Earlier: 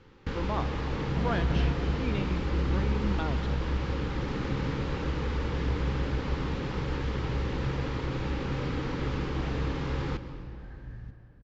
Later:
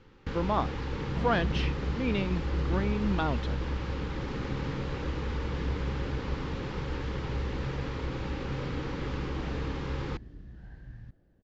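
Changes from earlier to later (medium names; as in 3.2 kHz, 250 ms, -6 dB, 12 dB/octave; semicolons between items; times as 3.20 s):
speech +7.5 dB; reverb: off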